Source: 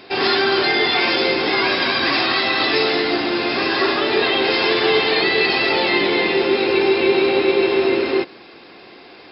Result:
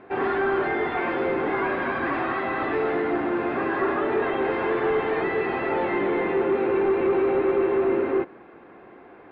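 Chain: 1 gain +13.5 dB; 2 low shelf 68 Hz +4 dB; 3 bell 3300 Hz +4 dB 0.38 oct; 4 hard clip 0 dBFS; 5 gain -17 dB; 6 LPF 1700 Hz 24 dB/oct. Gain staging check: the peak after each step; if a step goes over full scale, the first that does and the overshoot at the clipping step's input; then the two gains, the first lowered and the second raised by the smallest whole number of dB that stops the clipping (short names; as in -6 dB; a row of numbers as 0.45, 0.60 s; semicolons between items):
+8.5, +8.5, +9.0, 0.0, -17.0, -15.5 dBFS; step 1, 9.0 dB; step 1 +4.5 dB, step 5 -8 dB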